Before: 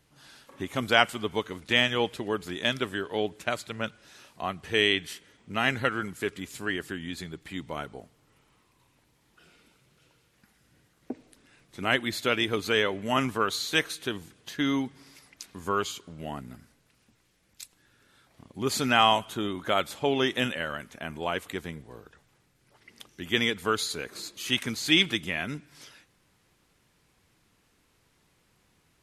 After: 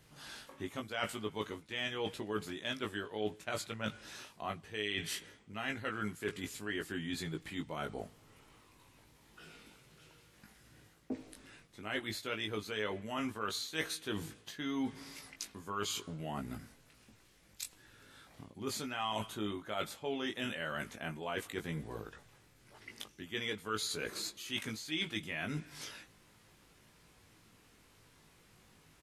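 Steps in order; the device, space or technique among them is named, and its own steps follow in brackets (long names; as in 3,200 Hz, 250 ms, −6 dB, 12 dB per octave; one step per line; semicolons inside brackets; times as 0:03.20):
compression on the reversed sound (reversed playback; downward compressor 6 to 1, threshold −39 dBFS, peak gain reduction 22.5 dB; reversed playback)
double-tracking delay 19 ms −4.5 dB
level +2 dB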